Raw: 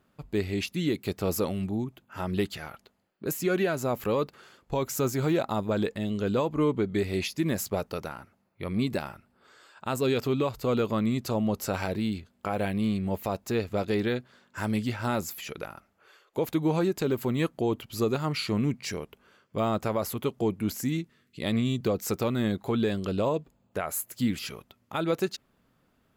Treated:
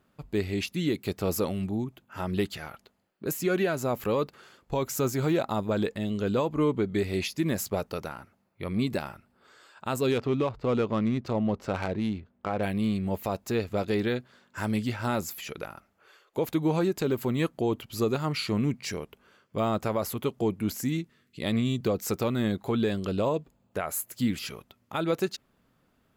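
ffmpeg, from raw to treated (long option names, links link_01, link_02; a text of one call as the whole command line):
ffmpeg -i in.wav -filter_complex "[0:a]asettb=1/sr,asplit=3[link_01][link_02][link_03];[link_01]atrim=end=10.114[link_04];[link_02]atrim=start=10.11:end=12.63,asetpts=PTS-STARTPTS,afade=type=in:duration=0.004:curve=qsin,afade=type=out:start_time=2.516:duration=0.004:curve=qsin,adynamicsmooth=sensitivity=4:basefreq=2000[link_05];[link_03]atrim=start=12.626[link_06];[link_04][link_05]acrossfade=duration=0.004:curve1=hsin:curve2=qsin[link_07];[link_07][link_06]acrossfade=duration=0.004:curve1=qsin:curve2=hsin" out.wav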